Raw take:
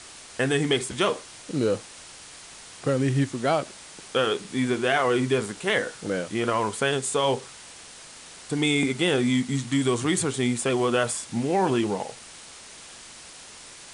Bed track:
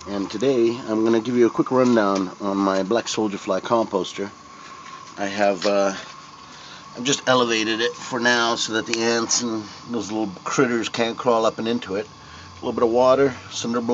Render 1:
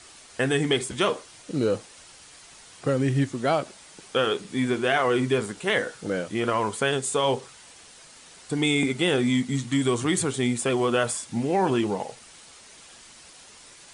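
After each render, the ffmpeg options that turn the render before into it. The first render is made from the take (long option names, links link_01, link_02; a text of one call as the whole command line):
ffmpeg -i in.wav -af "afftdn=noise_reduction=6:noise_floor=-45" out.wav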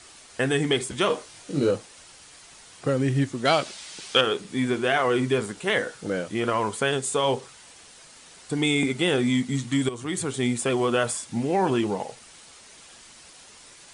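ffmpeg -i in.wav -filter_complex "[0:a]asettb=1/sr,asplit=3[link_01][link_02][link_03];[link_01]atrim=end=1.084[link_04];[link_02]atrim=start=1.08:end=1.71,asetpts=PTS-STARTPTS,afade=type=in:duration=0.004:curve=qsin,afade=type=out:start_time=0.626:duration=0.004:curve=qsin,asplit=2[link_05][link_06];[link_06]adelay=21,volume=-3.5dB[link_07];[link_05][link_07]amix=inputs=2:normalize=0,atrim=end_sample=27783[link_08];[link_03]atrim=start=1.706[link_09];[link_04][link_08]acrossfade=duration=0.004:curve1=hsin:curve2=qsin[link_10];[link_10][link_09]acrossfade=duration=0.004:curve1=qsin:curve2=hsin,asettb=1/sr,asplit=3[link_11][link_12][link_13];[link_11]atrim=end=3.454[link_14];[link_12]atrim=start=3.45:end=4.21,asetpts=PTS-STARTPTS,afade=type=in:duration=0.004:curve=qsin,afade=type=out:start_time=0.756:duration=0.004:curve=qsin,equalizer=frequency=4000:width=0.49:gain=11[link_15];[link_13]atrim=start=4.206[link_16];[link_14][link_15]acrossfade=duration=0.004:curve1=hsin:curve2=qsin[link_17];[link_17][link_16]acrossfade=duration=0.004:curve1=qsin:curve2=hsin,asplit=2[link_18][link_19];[link_18]atrim=end=9.89,asetpts=PTS-STARTPTS,afade=type=out:start_time=9.886:duration=0.004:curve=hsin:silence=0.223872[link_20];[link_19]atrim=start=9.89,asetpts=PTS-STARTPTS,afade=type=in:duration=0.56:silence=0.223872[link_21];[link_20][link_21]concat=n=2:v=0:a=1" out.wav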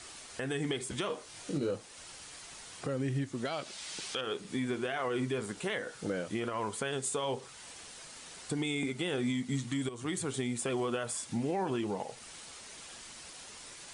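ffmpeg -i in.wav -af "acompressor=threshold=-39dB:ratio=1.5,alimiter=limit=-24dB:level=0:latency=1:release=193" out.wav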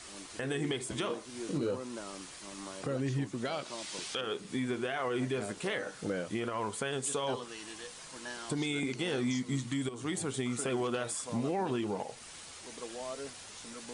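ffmpeg -i in.wav -i bed.wav -filter_complex "[1:a]volume=-25.5dB[link_01];[0:a][link_01]amix=inputs=2:normalize=0" out.wav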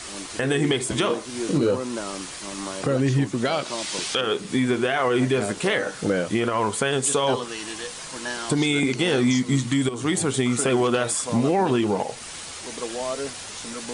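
ffmpeg -i in.wav -af "volume=12dB" out.wav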